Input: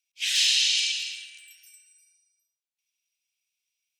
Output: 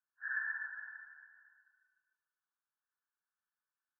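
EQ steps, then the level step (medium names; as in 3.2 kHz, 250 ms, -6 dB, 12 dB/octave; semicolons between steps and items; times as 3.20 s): high-pass 840 Hz 12 dB/octave; brick-wall FIR low-pass 1.8 kHz; static phaser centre 1.4 kHz, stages 4; +11.0 dB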